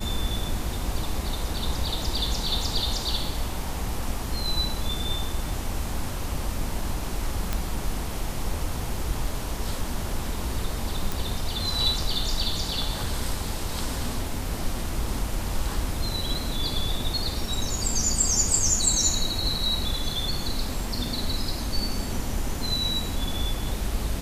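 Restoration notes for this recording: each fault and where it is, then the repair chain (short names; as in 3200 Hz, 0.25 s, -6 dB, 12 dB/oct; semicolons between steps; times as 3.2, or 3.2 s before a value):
7.53 pop -11 dBFS
11.12 pop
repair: de-click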